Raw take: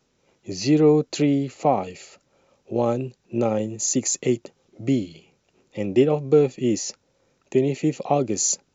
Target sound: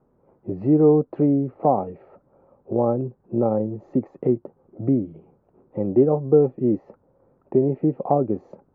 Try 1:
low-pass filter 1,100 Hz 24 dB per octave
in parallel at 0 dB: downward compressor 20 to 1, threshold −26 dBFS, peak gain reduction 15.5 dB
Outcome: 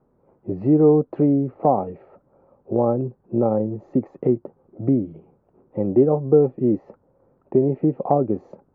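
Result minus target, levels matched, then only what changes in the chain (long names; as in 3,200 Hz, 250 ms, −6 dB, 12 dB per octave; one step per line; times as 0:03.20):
downward compressor: peak gain reduction −6 dB
change: downward compressor 20 to 1, threshold −32.5 dBFS, peak gain reduction 22 dB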